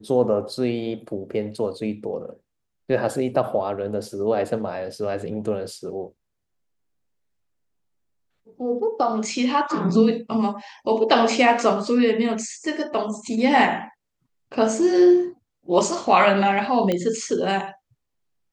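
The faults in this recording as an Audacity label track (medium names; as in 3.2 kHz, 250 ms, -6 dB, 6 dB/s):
16.920000	16.920000	pop -11 dBFS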